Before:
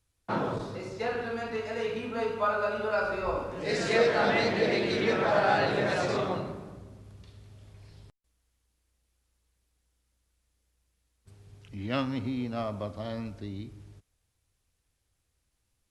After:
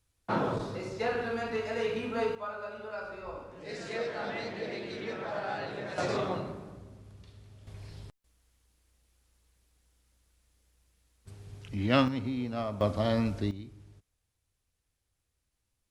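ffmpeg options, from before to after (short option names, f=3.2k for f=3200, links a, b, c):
-af "asetnsamples=n=441:p=0,asendcmd='2.35 volume volume -11dB;5.98 volume volume -2dB;7.67 volume volume 5.5dB;12.08 volume volume -1dB;12.81 volume volume 8dB;13.51 volume volume -4dB',volume=0.5dB"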